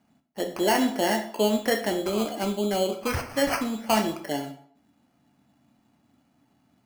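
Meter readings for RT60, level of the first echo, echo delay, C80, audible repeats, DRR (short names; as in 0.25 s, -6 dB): 0.60 s, none, none, 14.0 dB, none, 4.5 dB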